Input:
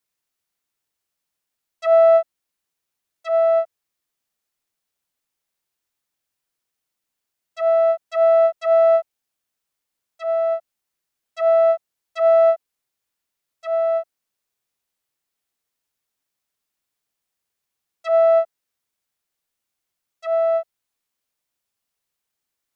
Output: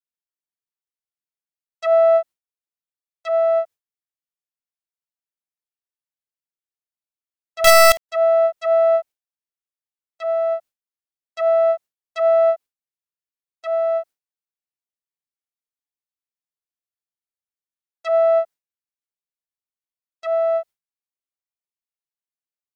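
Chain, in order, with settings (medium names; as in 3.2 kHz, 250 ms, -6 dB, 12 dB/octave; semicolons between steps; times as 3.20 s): gate with hold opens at -36 dBFS; in parallel at -2 dB: compression 8:1, threshold -26 dBFS, peak gain reduction 15 dB; 7.64–8.09 s: on the sum: companded quantiser 2-bit; trim -2.5 dB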